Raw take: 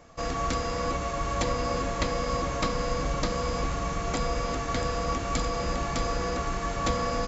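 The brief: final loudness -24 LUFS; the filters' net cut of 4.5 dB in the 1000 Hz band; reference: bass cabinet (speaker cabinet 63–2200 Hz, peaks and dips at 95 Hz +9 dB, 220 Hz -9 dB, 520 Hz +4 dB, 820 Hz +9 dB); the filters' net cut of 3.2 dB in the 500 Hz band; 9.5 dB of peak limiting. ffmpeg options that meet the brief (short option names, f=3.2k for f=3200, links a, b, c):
-af "equalizer=f=500:t=o:g=-5.5,equalizer=f=1k:t=o:g=-7.5,alimiter=limit=-23.5dB:level=0:latency=1,highpass=f=63:w=0.5412,highpass=f=63:w=1.3066,equalizer=f=95:t=q:w=4:g=9,equalizer=f=220:t=q:w=4:g=-9,equalizer=f=520:t=q:w=4:g=4,equalizer=f=820:t=q:w=4:g=9,lowpass=f=2.2k:w=0.5412,lowpass=f=2.2k:w=1.3066,volume=10.5dB"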